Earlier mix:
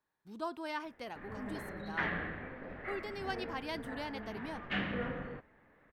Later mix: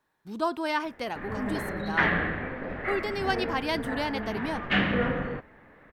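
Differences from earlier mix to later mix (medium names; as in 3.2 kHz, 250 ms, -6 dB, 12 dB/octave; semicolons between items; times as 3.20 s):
speech +11.0 dB; background +11.0 dB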